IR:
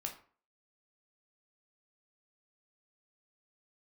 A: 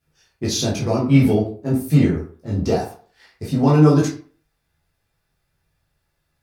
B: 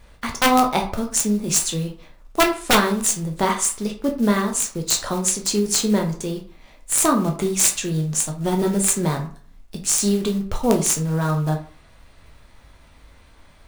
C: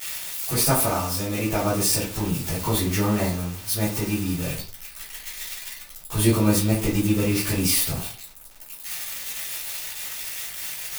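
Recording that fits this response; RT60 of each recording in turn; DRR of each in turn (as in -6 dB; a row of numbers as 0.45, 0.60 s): B; 0.45, 0.45, 0.45 s; -6.5, 2.0, -12.0 dB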